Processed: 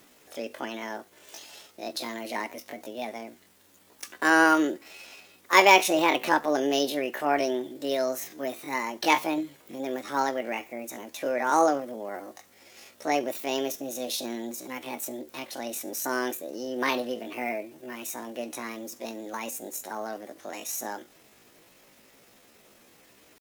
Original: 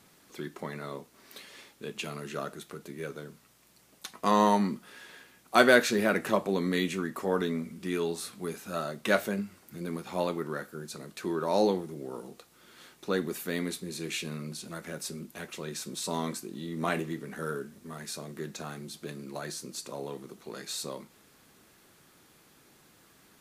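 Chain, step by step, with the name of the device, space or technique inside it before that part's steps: chipmunk voice (pitch shift +7.5 st); trim +3.5 dB

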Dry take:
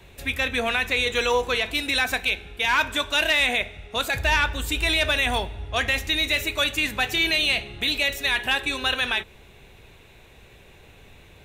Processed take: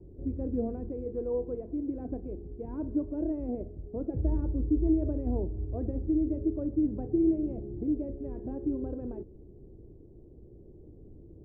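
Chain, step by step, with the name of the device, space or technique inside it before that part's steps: 0.89–2.00 s: bass shelf 490 Hz -5.5 dB; under water (low-pass 430 Hz 24 dB/octave; peaking EQ 320 Hz +10 dB 0.4 oct)

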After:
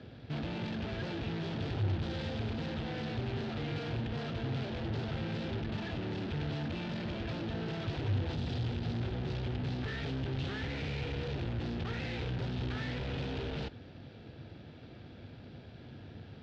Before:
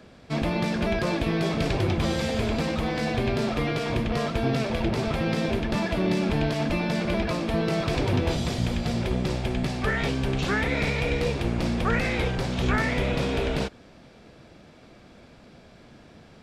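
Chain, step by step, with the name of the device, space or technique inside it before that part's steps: guitar amplifier (valve stage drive 38 dB, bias 0.55; tone controls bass +7 dB, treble +7 dB; cabinet simulation 78–3700 Hz, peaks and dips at 100 Hz +7 dB, 190 Hz -7 dB, 620 Hz -4 dB, 1.1 kHz -9 dB, 2.2 kHz -5 dB); trim +1 dB

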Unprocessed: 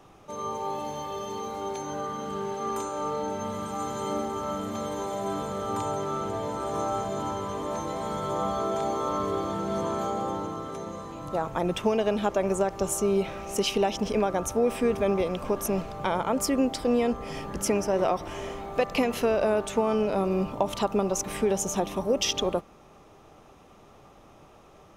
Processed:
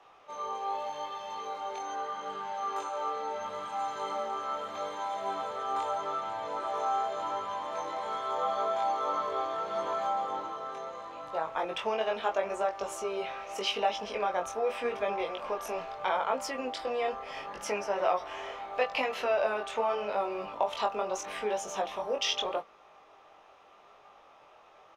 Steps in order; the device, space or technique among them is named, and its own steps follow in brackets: three-band isolator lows -22 dB, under 520 Hz, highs -17 dB, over 4.7 kHz; double-tracked vocal (doubling 24 ms -13.5 dB; chorus 0.79 Hz, delay 19 ms, depth 3.9 ms); trim +3 dB

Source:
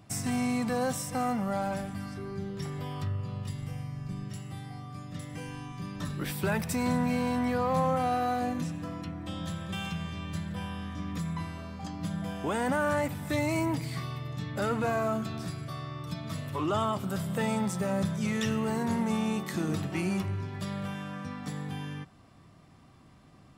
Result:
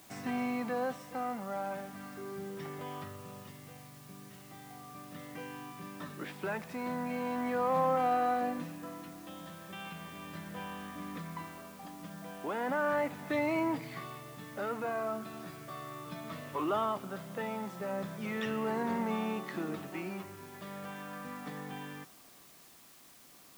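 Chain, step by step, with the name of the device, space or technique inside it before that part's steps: shortwave radio (band-pass 280–2600 Hz; tremolo 0.37 Hz, depth 46%; white noise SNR 21 dB)

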